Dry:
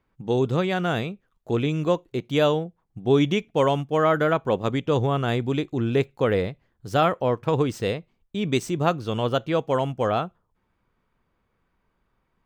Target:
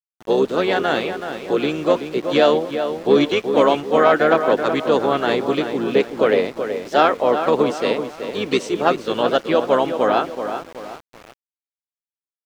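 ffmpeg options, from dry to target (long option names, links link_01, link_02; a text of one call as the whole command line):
ffmpeg -i in.wav -filter_complex "[0:a]acontrast=89,highpass=frequency=280:width=0.5412,highpass=frequency=280:width=1.3066,asplit=3[link_01][link_02][link_03];[link_02]asetrate=22050,aresample=44100,atempo=2,volume=-13dB[link_04];[link_03]asetrate=52444,aresample=44100,atempo=0.840896,volume=-9dB[link_05];[link_01][link_04][link_05]amix=inputs=3:normalize=0,asplit=2[link_06][link_07];[link_07]adelay=377,lowpass=frequency=2800:poles=1,volume=-8dB,asplit=2[link_08][link_09];[link_09]adelay=377,lowpass=frequency=2800:poles=1,volume=0.42,asplit=2[link_10][link_11];[link_11]adelay=377,lowpass=frequency=2800:poles=1,volume=0.42,asplit=2[link_12][link_13];[link_13]adelay=377,lowpass=frequency=2800:poles=1,volume=0.42,asplit=2[link_14][link_15];[link_15]adelay=377,lowpass=frequency=2800:poles=1,volume=0.42[link_16];[link_06][link_08][link_10][link_12][link_14][link_16]amix=inputs=6:normalize=0,aeval=exprs='val(0)*gte(abs(val(0)),0.0188)':channel_layout=same,acrossover=split=6900[link_17][link_18];[link_18]acompressor=threshold=-52dB:ratio=4:attack=1:release=60[link_19];[link_17][link_19]amix=inputs=2:normalize=0,volume=-1dB" out.wav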